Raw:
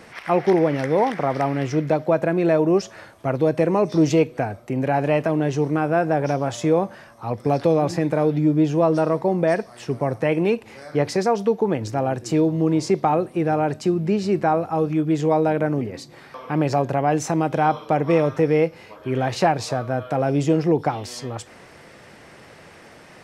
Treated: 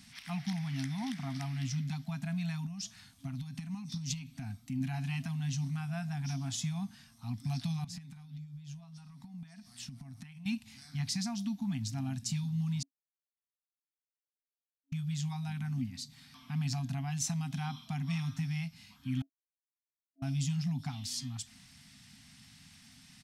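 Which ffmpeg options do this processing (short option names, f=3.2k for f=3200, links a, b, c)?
-filter_complex "[0:a]asettb=1/sr,asplit=3[a][b][c];[a]atrim=end=2.664[d];[b]atrim=start=2.66:end=4.81,asetpts=PTS-STARTPTS,afade=t=in:d=0.004:c=qsin,afade=t=out:st=2.146:d=0.004:c=qsin,acompressor=threshold=-22dB:ratio=6:attack=3.2:release=140:knee=1:detection=peak[e];[c]atrim=start=4.806[f];[d][e]acrossfade=d=0.004:c1=hsin:c2=qsin[g];[g][f]acrossfade=d=0.004:c1=qsin:c2=hsin,asettb=1/sr,asplit=3[h][i][j];[h]atrim=end=7.844[k];[i]atrim=start=7.84:end=10.46,asetpts=PTS-STARTPTS,afade=t=in:d=0.004:c=qsin,afade=t=out:st=2.616:d=0.004:c=qsin,acompressor=threshold=-30dB:ratio=20:attack=3.2:release=140:knee=1:detection=peak[l];[j]atrim=start=10.456[m];[k][l]acrossfade=d=0.004:c1=hsin:c2=qsin[n];[n][m]acrossfade=d=0.004:c1=qsin:c2=hsin,asplit=5[o][p][q][r][s];[o]atrim=end=12.83,asetpts=PTS-STARTPTS,afade=t=out:st=12.826:d=0.004:c=hsin[t];[p]atrim=start=12.83:end=14.92,asetpts=PTS-STARTPTS,volume=0[u];[q]atrim=start=14.92:end=19.22,asetpts=PTS-STARTPTS,afade=t=in:d=0.004:c=hsin,afade=t=out:st=4.296:d=0.004:c=hsin[v];[r]atrim=start=19.22:end=20.22,asetpts=PTS-STARTPTS,volume=0[w];[s]atrim=start=20.22,asetpts=PTS-STARTPTS,afade=t=in:d=0.004:c=hsin[x];[t][u][v][w][x]concat=n=5:v=0:a=1,firequalizer=gain_entry='entry(340,0);entry(690,-18);entry(3600,5)':delay=0.05:min_phase=1,afftfilt=real='re*(1-between(b*sr/4096,270,660))':imag='im*(1-between(b*sr/4096,270,660))':win_size=4096:overlap=0.75,volume=-7.5dB"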